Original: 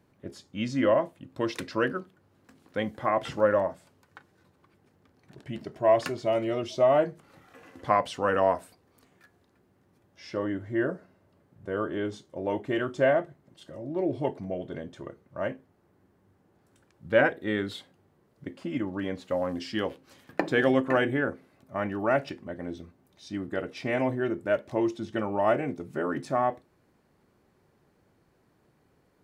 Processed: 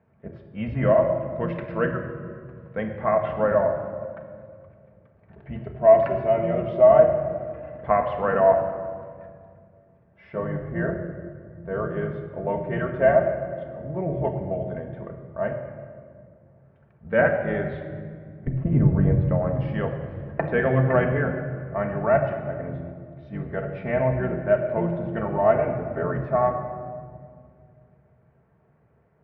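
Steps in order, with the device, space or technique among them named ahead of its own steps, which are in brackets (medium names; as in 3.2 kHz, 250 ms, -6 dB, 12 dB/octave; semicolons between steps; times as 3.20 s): sub-octave bass pedal (octave divider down 1 oct, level -2 dB; cabinet simulation 63–2200 Hz, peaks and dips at 70 Hz +6 dB, 140 Hz +5 dB, 280 Hz -10 dB, 630 Hz +6 dB); 18.47–19.21 s: tilt EQ -4.5 dB/octave; simulated room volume 3700 m³, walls mixed, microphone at 1.6 m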